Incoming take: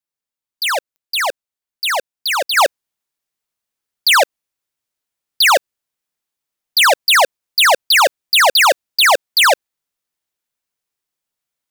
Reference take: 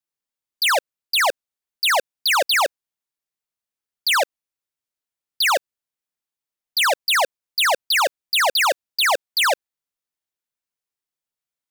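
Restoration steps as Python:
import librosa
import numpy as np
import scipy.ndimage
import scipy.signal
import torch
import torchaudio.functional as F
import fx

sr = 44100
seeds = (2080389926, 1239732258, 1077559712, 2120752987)

y = fx.fix_declick_ar(x, sr, threshold=10.0)
y = fx.fix_level(y, sr, at_s=2.57, step_db=-7.0)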